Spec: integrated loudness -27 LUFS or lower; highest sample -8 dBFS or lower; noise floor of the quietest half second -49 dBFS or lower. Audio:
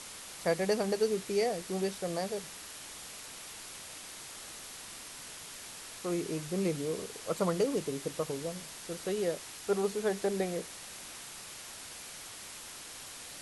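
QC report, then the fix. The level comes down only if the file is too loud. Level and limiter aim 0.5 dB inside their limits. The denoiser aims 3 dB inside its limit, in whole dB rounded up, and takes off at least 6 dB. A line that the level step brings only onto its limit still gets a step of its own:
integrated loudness -36.0 LUFS: pass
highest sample -17.5 dBFS: pass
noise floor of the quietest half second -46 dBFS: fail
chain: noise reduction 6 dB, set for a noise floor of -46 dBFS

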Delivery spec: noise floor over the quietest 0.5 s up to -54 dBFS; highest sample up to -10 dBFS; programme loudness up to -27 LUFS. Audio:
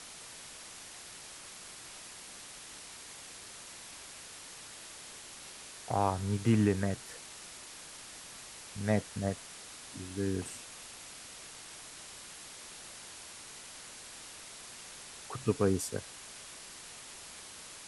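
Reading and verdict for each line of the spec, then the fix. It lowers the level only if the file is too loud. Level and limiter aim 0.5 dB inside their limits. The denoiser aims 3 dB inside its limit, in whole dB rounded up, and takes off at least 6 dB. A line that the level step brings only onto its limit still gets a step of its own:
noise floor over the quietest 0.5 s -49 dBFS: fail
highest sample -14.0 dBFS: pass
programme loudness -38.5 LUFS: pass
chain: noise reduction 8 dB, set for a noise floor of -49 dBFS

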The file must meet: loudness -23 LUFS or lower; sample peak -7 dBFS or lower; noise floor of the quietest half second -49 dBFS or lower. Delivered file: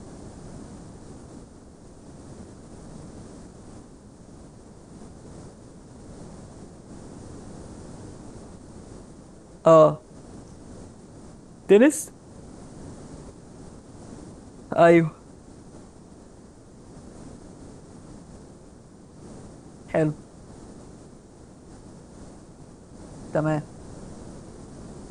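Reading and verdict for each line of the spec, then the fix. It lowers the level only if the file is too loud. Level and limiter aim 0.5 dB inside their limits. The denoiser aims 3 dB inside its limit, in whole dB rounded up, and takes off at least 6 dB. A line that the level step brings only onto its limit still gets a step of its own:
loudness -20.5 LUFS: fail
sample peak -4.5 dBFS: fail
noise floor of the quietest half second -48 dBFS: fail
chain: trim -3 dB

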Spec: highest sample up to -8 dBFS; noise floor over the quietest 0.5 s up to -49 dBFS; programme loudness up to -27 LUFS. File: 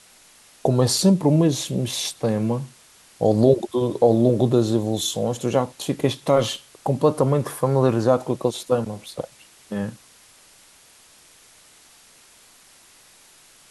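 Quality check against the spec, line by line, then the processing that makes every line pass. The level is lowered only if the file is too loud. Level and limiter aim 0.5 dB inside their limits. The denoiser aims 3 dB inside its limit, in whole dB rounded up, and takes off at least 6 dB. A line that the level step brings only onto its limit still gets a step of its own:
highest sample -5.5 dBFS: fail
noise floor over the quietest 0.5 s -52 dBFS: pass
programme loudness -21.5 LUFS: fail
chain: trim -6 dB

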